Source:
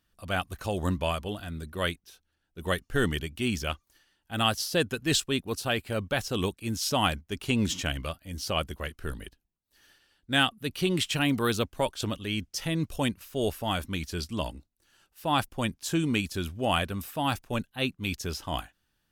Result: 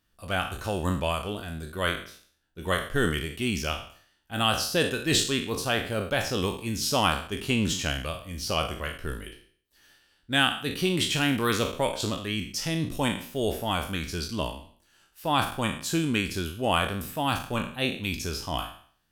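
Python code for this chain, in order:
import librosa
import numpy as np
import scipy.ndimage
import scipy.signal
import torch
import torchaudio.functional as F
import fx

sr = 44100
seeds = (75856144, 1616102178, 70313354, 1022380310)

y = fx.spec_trails(x, sr, decay_s=0.51)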